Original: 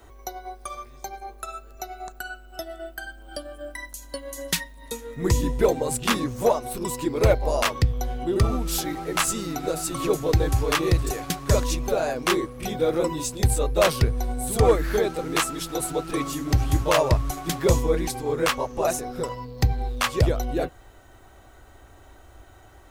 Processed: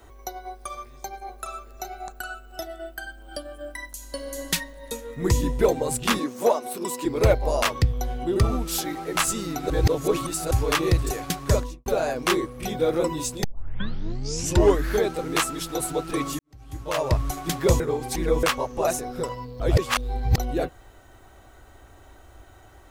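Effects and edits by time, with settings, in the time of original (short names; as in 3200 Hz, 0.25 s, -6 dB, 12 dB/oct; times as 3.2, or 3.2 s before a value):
0.46–2.67 echo 0.805 s -8.5 dB
3.94–4.43 reverb throw, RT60 2.9 s, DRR 2.5 dB
6.19–7.05 HPF 210 Hz 24 dB/oct
8.64–9.15 low shelf 110 Hz -10 dB
9.7–10.51 reverse
11.46–11.86 studio fade out
13.44 tape start 1.44 s
16.39–17.21 fade in quadratic
17.8–18.43 reverse
19.6–20.38 reverse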